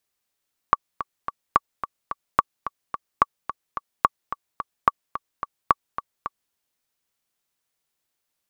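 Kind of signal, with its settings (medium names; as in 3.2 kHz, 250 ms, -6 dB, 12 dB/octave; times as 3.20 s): metronome 217 bpm, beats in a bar 3, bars 7, 1.14 kHz, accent 12.5 dB -1.5 dBFS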